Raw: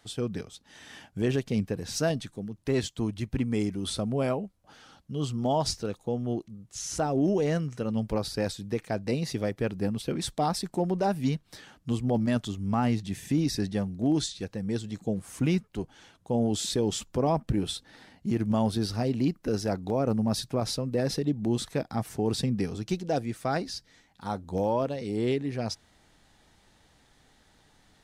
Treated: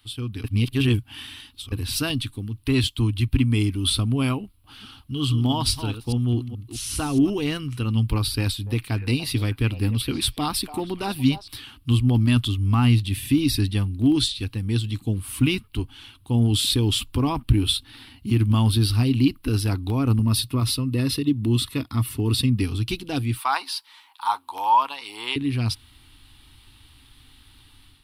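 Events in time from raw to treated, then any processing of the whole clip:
0.44–1.72 reverse
4.43–7.3 reverse delay 0.212 s, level -10 dB
8.26–11.48 delay with a stepping band-pass 0.29 s, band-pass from 680 Hz, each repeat 1.4 oct, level -9 dB
20.19–22.62 notch comb 790 Hz
23.37–25.36 resonant high-pass 920 Hz, resonance Q 5.8
whole clip: EQ curve 120 Hz 0 dB, 170 Hz -20 dB, 270 Hz -4 dB, 580 Hz -25 dB, 1100 Hz -6 dB, 1800 Hz -12 dB, 2800 Hz +2 dB, 4400 Hz -3 dB, 6600 Hz -18 dB, 9900 Hz +2 dB; AGC gain up to 7 dB; gain +6.5 dB

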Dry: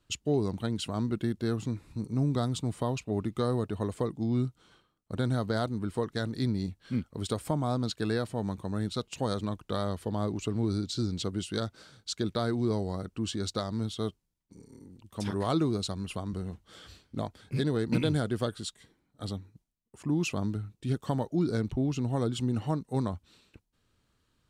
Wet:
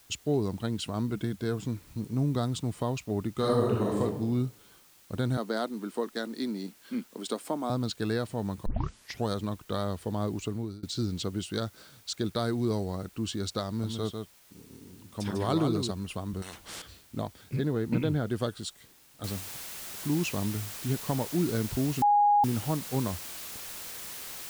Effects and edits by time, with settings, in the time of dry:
1.09–1.65 ripple EQ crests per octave 1.7, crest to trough 7 dB
3.33–4.01 reverb throw, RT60 0.91 s, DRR -4 dB
5.37–7.7 steep high-pass 210 Hz
8.66 tape start 0.63 s
10.42–10.83 fade out, to -24 dB
12.23–12.84 high shelf 7900 Hz -> 5000 Hz +7 dB
13.68–15.91 echo 0.147 s -5.5 dB
16.42–16.82 spectral compressor 4:1
17.56–18.3 air absorption 300 m
19.24 noise floor step -59 dB -41 dB
22.02–22.44 bleep 824 Hz -18.5 dBFS

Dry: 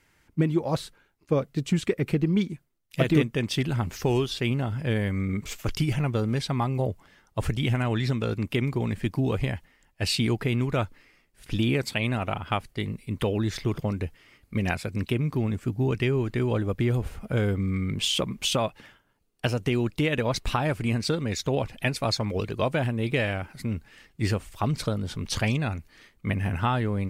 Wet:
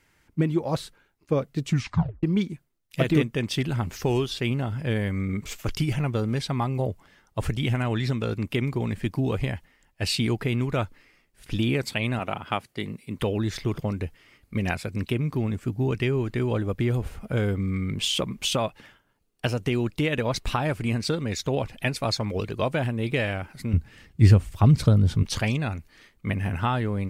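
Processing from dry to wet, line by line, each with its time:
1.67 tape stop 0.56 s
12.19–13.19 HPF 140 Hz
23.73–25.23 bell 84 Hz +13.5 dB 2.9 oct

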